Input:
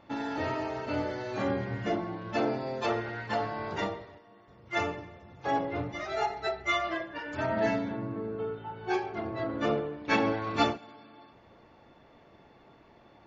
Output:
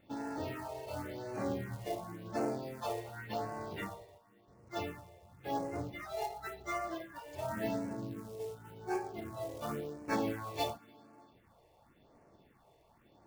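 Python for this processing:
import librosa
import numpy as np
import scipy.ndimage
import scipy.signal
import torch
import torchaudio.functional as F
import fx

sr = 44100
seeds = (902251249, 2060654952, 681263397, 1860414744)

y = fx.quant_float(x, sr, bits=2)
y = fx.phaser_stages(y, sr, stages=4, low_hz=230.0, high_hz=3500.0, hz=0.92, feedback_pct=5)
y = y * librosa.db_to_amplitude(-5.5)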